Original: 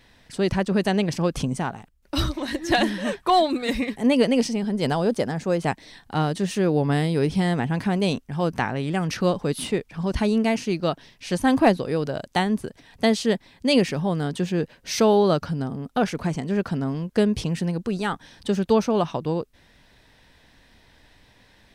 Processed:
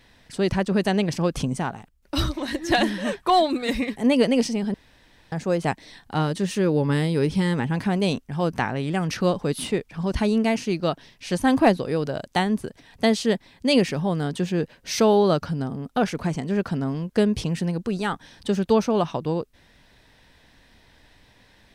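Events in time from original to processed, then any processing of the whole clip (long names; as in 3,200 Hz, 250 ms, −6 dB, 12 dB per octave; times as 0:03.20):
0:04.74–0:05.32: fill with room tone
0:06.19–0:07.76: Butterworth band-reject 710 Hz, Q 6.5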